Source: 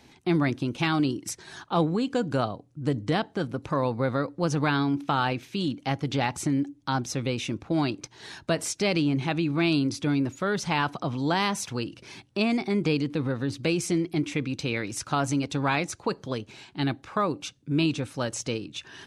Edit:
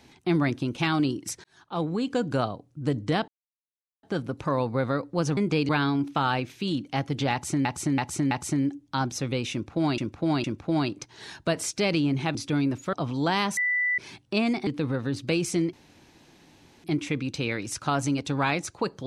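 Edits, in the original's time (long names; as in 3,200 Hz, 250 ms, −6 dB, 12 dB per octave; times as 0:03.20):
0:01.44–0:02.09: fade in
0:03.28: splice in silence 0.75 s
0:06.25–0:06.58: repeat, 4 plays
0:07.46–0:07.92: repeat, 3 plays
0:09.37–0:09.89: remove
0:10.47–0:10.97: remove
0:11.61–0:12.02: beep over 1,980 Hz −22 dBFS
0:12.71–0:13.03: move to 0:04.62
0:14.09: splice in room tone 1.11 s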